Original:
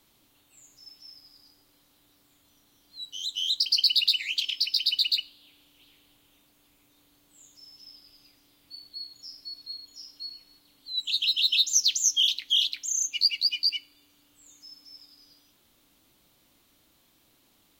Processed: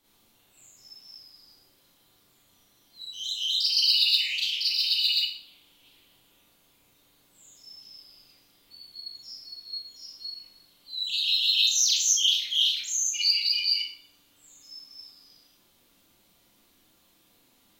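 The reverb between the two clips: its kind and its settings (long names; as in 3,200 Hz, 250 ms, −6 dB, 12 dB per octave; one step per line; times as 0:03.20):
four-comb reverb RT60 0.48 s, combs from 32 ms, DRR −7.5 dB
level −7 dB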